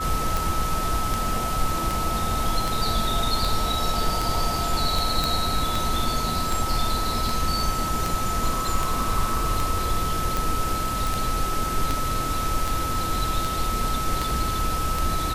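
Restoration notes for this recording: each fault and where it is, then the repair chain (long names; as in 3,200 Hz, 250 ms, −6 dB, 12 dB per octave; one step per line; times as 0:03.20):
scratch tick 78 rpm
whistle 1,300 Hz −27 dBFS
0:05.24: click
0:11.07: click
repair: click removal
notch filter 1,300 Hz, Q 30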